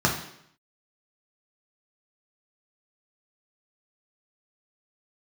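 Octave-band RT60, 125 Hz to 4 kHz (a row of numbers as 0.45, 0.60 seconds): 0.70, 0.75, 0.70, 0.70, 0.70, 0.70 seconds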